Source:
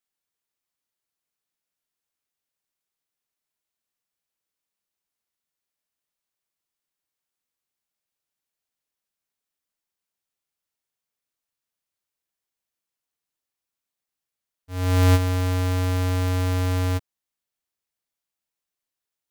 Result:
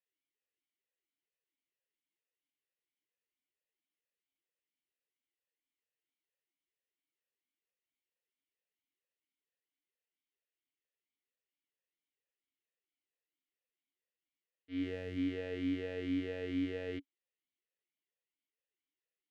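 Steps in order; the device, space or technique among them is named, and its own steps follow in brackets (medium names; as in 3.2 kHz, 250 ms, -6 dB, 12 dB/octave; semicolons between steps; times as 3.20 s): high-pass 66 Hz 12 dB/octave; resonant high shelf 5.5 kHz -11.5 dB, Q 1.5; talk box (valve stage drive 20 dB, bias 0.3; talking filter e-i 2.2 Hz); trim +5.5 dB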